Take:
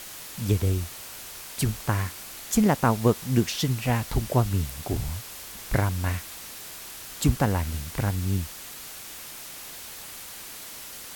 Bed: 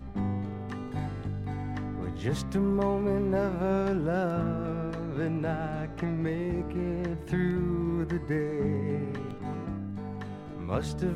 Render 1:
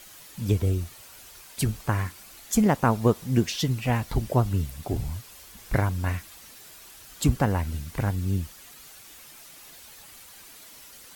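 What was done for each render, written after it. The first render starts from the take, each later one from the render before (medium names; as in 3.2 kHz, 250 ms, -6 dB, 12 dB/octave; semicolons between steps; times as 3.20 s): noise reduction 9 dB, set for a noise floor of -41 dBFS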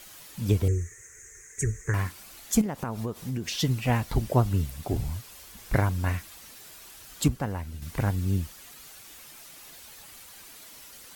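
0.68–1.94 s: FFT filter 110 Hz 0 dB, 250 Hz -13 dB, 440 Hz +5 dB, 670 Hz -25 dB, 1.3 kHz -10 dB, 1.9 kHz +8 dB, 3 kHz -25 dB, 4.5 kHz -28 dB, 6.5 kHz +10 dB, 12 kHz -16 dB; 2.61–3.52 s: compression 10:1, threshold -27 dBFS; 7.28–7.82 s: gain -7.5 dB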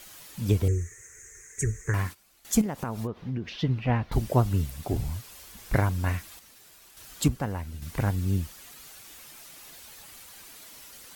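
2.03–2.45 s: gate -45 dBFS, range -15 dB; 3.07–4.12 s: distance through air 290 m; 6.39–6.97 s: companding laws mixed up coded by A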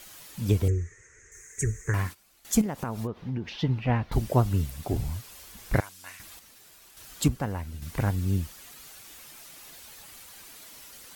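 0.70–1.32 s: distance through air 110 m; 3.28–3.79 s: peaking EQ 870 Hz +10.5 dB 0.2 oct; 5.80–6.20 s: band-pass filter 7.8 kHz, Q 0.56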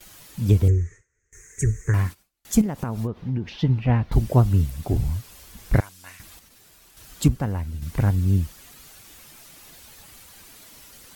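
gate with hold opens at -40 dBFS; bass shelf 270 Hz +8 dB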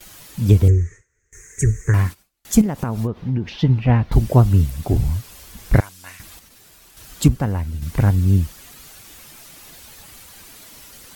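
trim +4.5 dB; peak limiter -1 dBFS, peak gain reduction 0.5 dB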